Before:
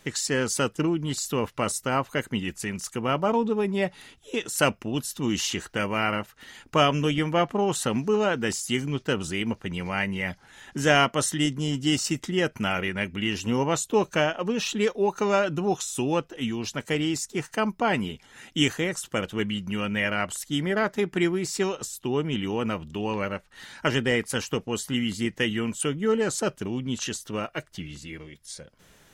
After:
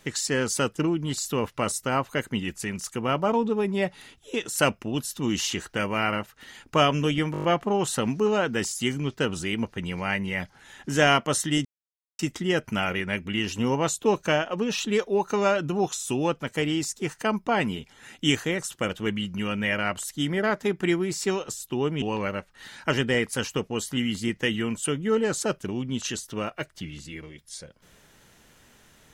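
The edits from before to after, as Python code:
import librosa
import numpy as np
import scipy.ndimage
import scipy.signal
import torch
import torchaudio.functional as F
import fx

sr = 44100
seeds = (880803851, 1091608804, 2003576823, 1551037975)

y = fx.edit(x, sr, fx.stutter(start_s=7.32, slice_s=0.02, count=7),
    fx.silence(start_s=11.53, length_s=0.54),
    fx.cut(start_s=16.28, length_s=0.45),
    fx.cut(start_s=22.35, length_s=0.64), tone=tone)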